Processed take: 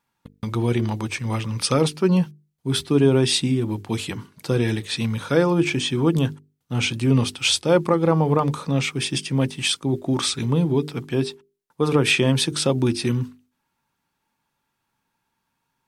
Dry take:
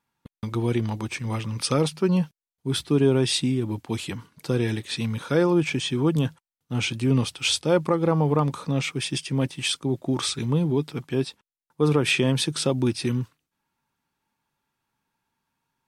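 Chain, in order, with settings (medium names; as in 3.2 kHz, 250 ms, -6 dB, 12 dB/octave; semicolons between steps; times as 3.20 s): hum notches 50/100/150/200/250/300/350/400/450 Hz; trim +3.5 dB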